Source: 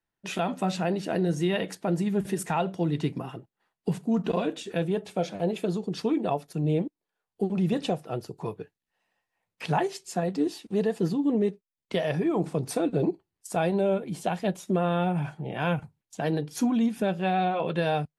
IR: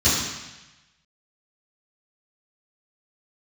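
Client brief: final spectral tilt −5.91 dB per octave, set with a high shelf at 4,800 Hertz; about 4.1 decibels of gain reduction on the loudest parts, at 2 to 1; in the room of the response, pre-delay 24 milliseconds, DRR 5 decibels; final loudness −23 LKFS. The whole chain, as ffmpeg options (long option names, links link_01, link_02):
-filter_complex "[0:a]highshelf=frequency=4800:gain=5.5,acompressor=threshold=-28dB:ratio=2,asplit=2[link_01][link_02];[1:a]atrim=start_sample=2205,adelay=24[link_03];[link_02][link_03]afir=irnorm=-1:irlink=0,volume=-22.5dB[link_04];[link_01][link_04]amix=inputs=2:normalize=0,volume=6dB"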